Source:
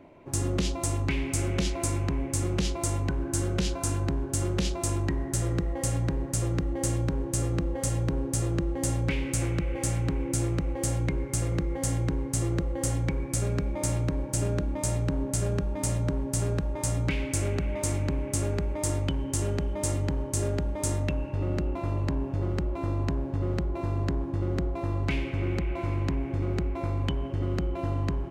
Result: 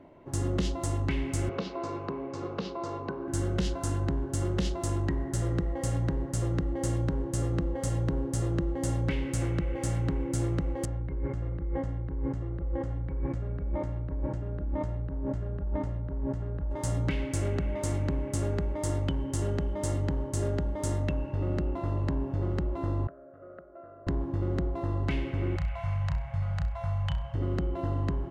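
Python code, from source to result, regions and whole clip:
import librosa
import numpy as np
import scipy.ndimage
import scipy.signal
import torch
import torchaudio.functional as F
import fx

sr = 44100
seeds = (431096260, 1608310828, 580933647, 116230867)

y = fx.chain(x, sr, fx.cabinet(low_hz=210.0, low_slope=12, high_hz=4600.0, hz=(290.0, 430.0, 1100.0, 1900.0, 3200.0), db=(-4, 7, 6, -8, -7)),
    fx.hum_notches(base_hz=60, count=7), at=(1.49, 3.28))
y = fx.chain(y, sr, fx.lowpass(hz=2100.0, slope=12),
    fx.over_compress(threshold_db=-34.0, ratio=-1.0),
    fx.peak_eq(hz=61.0, db=7.0, octaves=0.98), at=(10.85, 16.71))
y = fx.chain(y, sr, fx.double_bandpass(hz=910.0, octaves=1.1),
    fx.air_absorb(metres=380.0), at=(23.07, 24.07))
y = fx.chain(y, sr, fx.cheby2_bandstop(low_hz=220.0, high_hz=440.0, order=4, stop_db=40),
    fx.room_flutter(wall_m=5.6, rt60_s=0.27), at=(25.56, 27.35))
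y = fx.high_shelf(y, sr, hz=5000.0, db=-9.5)
y = fx.notch(y, sr, hz=2400.0, q=7.9)
y = F.gain(torch.from_numpy(y), -1.0).numpy()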